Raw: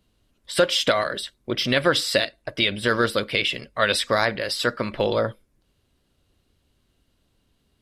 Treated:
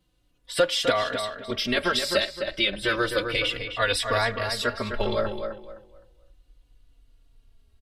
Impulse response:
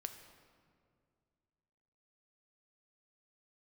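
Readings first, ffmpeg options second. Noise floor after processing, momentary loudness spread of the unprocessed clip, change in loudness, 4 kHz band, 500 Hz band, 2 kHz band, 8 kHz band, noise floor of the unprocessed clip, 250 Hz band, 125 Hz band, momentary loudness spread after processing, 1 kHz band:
-66 dBFS, 8 LU, -3.0 dB, -2.5 dB, -3.0 dB, -2.5 dB, -3.0 dB, -69 dBFS, -4.0 dB, -3.5 dB, 7 LU, -2.0 dB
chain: -filter_complex "[0:a]asubboost=boost=11:cutoff=50,asplit=2[a][b];[b]adelay=258,lowpass=f=2.8k:p=1,volume=-6.5dB,asplit=2[c][d];[d]adelay=258,lowpass=f=2.8k:p=1,volume=0.28,asplit=2[e][f];[f]adelay=258,lowpass=f=2.8k:p=1,volume=0.28,asplit=2[g][h];[h]adelay=258,lowpass=f=2.8k:p=1,volume=0.28[i];[a][c][e][g][i]amix=inputs=5:normalize=0,asplit=2[j][k];[k]adelay=3.5,afreqshift=-0.32[l];[j][l]amix=inputs=2:normalize=1"

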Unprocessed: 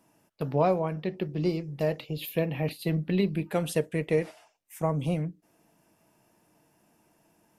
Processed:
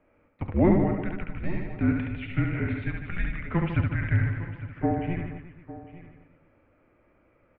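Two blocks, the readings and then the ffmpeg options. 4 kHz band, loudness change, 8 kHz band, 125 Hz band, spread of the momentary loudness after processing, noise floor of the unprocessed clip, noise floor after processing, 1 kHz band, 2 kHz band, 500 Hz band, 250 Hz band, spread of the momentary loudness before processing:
n/a, +1.5 dB, under -35 dB, +4.0 dB, 17 LU, -68 dBFS, -64 dBFS, -1.0 dB, +5.5 dB, -4.0 dB, +3.5 dB, 7 LU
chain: -filter_complex "[0:a]asplit=2[a][b];[b]aecho=0:1:854:0.158[c];[a][c]amix=inputs=2:normalize=0,highpass=f=380:t=q:w=0.5412,highpass=f=380:t=q:w=1.307,lowpass=f=2.8k:t=q:w=0.5176,lowpass=f=2.8k:t=q:w=0.7071,lowpass=f=2.8k:t=q:w=1.932,afreqshift=-360,asplit=2[d][e];[e]aecho=0:1:70|150.5|243.1|349.5|472:0.631|0.398|0.251|0.158|0.1[f];[d][f]amix=inputs=2:normalize=0,volume=4dB"

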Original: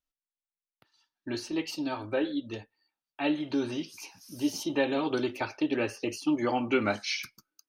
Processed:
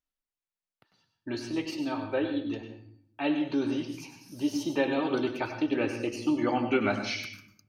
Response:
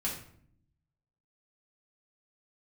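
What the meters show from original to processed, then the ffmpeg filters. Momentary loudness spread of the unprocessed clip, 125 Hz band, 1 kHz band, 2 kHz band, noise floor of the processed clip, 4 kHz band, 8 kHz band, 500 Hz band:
14 LU, +2.0 dB, +0.5 dB, 0.0 dB, under -85 dBFS, -2.0 dB, -4.0 dB, +0.5 dB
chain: -filter_complex "[0:a]highshelf=f=5.3k:g=-7.5,asplit=2[a][b];[1:a]atrim=start_sample=2205,adelay=96[c];[b][c]afir=irnorm=-1:irlink=0,volume=-10.5dB[d];[a][d]amix=inputs=2:normalize=0"

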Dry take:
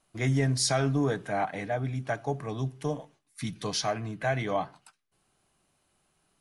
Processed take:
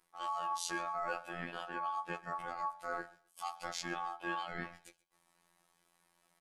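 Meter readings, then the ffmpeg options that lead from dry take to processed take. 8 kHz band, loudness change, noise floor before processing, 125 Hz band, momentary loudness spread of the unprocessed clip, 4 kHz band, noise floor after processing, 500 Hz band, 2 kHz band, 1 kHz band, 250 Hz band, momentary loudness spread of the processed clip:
-12.0 dB, -10.0 dB, -73 dBFS, -26.5 dB, 11 LU, -11.5 dB, -76 dBFS, -14.5 dB, -5.5 dB, -3.0 dB, -16.5 dB, 8 LU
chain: -af "areverse,acompressor=threshold=-37dB:ratio=5,areverse,aeval=exprs='val(0)*sin(2*PI*990*n/s)':c=same,aecho=1:1:5.5:0.81,afftfilt=real='hypot(re,im)*cos(PI*b)':imag='0':win_size=2048:overlap=0.75,aecho=1:1:129|258:0.0794|0.0167,volume=2.5dB"

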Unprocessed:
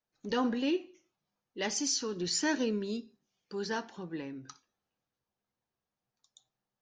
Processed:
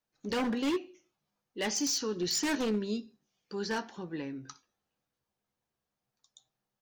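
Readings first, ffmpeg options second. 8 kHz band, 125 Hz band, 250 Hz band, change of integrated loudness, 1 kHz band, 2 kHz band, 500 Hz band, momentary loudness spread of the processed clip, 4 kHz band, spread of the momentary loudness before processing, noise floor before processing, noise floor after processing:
+0.5 dB, +1.5 dB, +0.5 dB, +0.5 dB, 0.0 dB, 0.0 dB, +0.5 dB, 12 LU, +1.0 dB, 13 LU, under -85 dBFS, under -85 dBFS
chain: -filter_complex "[0:a]aeval=exprs='0.0473*(abs(mod(val(0)/0.0473+3,4)-2)-1)':c=same,asplit=2[a][b];[b]adelay=14,volume=-13dB[c];[a][c]amix=inputs=2:normalize=0,volume=1.5dB"

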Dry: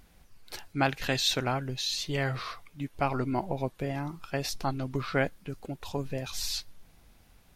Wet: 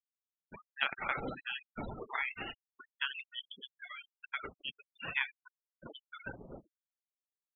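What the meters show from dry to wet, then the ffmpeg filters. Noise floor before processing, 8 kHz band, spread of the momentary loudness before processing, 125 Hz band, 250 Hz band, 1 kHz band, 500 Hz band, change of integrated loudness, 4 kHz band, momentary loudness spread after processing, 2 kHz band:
-60 dBFS, under -40 dB, 13 LU, -20.5 dB, -16.5 dB, -9.5 dB, -16.0 dB, -8.0 dB, -10.0 dB, 18 LU, -2.0 dB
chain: -filter_complex "[0:a]asplit=2[a][b];[b]aecho=0:1:74:0.15[c];[a][c]amix=inputs=2:normalize=0,agate=range=-33dB:threshold=-45dB:ratio=3:detection=peak,highpass=f=1.4k:p=1,aderivative,acompressor=threshold=-41dB:ratio=5,aresample=11025,acrusher=bits=2:mode=log:mix=0:aa=0.000001,aresample=44100,afftfilt=real='re*gte(hypot(re,im),0.00501)':imag='im*gte(hypot(re,im),0.00501)':win_size=1024:overlap=0.75,lowpass=f=3.4k:t=q:w=0.5098,lowpass=f=3.4k:t=q:w=0.6013,lowpass=f=3.4k:t=q:w=0.9,lowpass=f=3.4k:t=q:w=2.563,afreqshift=-4000,volume=14dB"

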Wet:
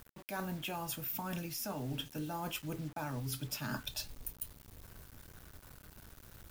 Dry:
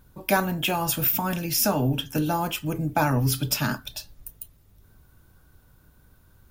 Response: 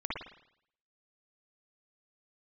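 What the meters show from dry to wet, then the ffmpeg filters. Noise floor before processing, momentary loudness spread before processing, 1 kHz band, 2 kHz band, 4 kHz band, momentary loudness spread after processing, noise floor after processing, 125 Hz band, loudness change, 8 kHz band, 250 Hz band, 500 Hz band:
-58 dBFS, 17 LU, -15.5 dB, -15.0 dB, -12.5 dB, 16 LU, -60 dBFS, -15.0 dB, -15.5 dB, -14.0 dB, -14.5 dB, -16.0 dB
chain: -af "areverse,acompressor=threshold=-36dB:ratio=20,areverse,acrusher=bits=8:mix=0:aa=0.000001"

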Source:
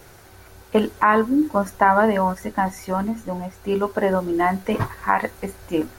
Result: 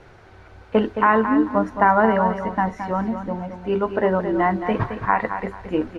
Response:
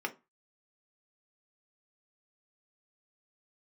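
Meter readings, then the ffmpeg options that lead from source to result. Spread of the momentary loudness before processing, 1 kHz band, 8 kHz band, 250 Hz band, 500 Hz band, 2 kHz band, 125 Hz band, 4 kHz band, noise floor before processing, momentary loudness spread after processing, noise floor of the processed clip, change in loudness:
10 LU, +0.5 dB, under -15 dB, +0.5 dB, +0.5 dB, 0.0 dB, +0.5 dB, -3.0 dB, -47 dBFS, 9 LU, -47 dBFS, +0.5 dB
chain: -af "lowpass=2.9k,aecho=1:1:219|438|657:0.355|0.0923|0.024"

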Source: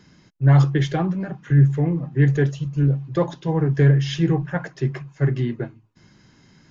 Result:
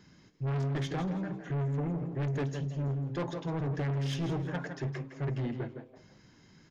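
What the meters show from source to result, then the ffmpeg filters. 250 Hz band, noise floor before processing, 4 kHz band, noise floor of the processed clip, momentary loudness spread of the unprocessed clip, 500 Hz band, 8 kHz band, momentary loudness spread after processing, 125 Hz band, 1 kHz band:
-12.5 dB, -55 dBFS, -10.0 dB, -60 dBFS, 10 LU, -11.5 dB, n/a, 5 LU, -14.5 dB, -9.5 dB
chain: -filter_complex "[0:a]asplit=2[a][b];[b]aecho=0:1:159:0.224[c];[a][c]amix=inputs=2:normalize=0,asoftclip=type=tanh:threshold=-23.5dB,asplit=2[d][e];[e]asplit=3[f][g][h];[f]adelay=167,afreqshift=130,volume=-14dB[i];[g]adelay=334,afreqshift=260,volume=-23.9dB[j];[h]adelay=501,afreqshift=390,volume=-33.8dB[k];[i][j][k]amix=inputs=3:normalize=0[l];[d][l]amix=inputs=2:normalize=0,volume=-6dB"

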